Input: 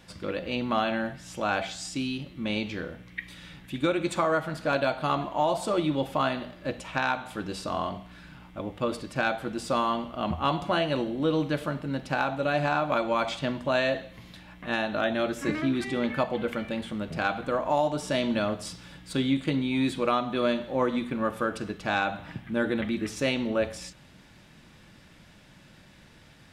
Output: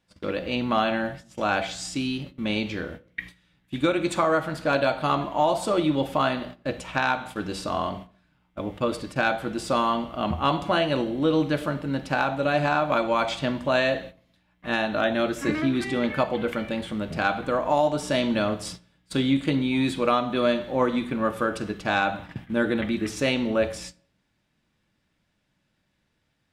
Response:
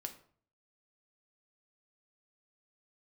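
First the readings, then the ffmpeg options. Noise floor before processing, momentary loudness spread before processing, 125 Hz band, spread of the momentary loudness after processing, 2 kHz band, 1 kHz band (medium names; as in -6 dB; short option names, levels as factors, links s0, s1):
-54 dBFS, 10 LU, +2.5 dB, 9 LU, +3.0 dB, +3.0 dB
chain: -filter_complex "[0:a]agate=range=0.0794:threshold=0.00891:ratio=16:detection=peak,asplit=2[s0][s1];[1:a]atrim=start_sample=2205[s2];[s1][s2]afir=irnorm=-1:irlink=0,volume=0.631[s3];[s0][s3]amix=inputs=2:normalize=0"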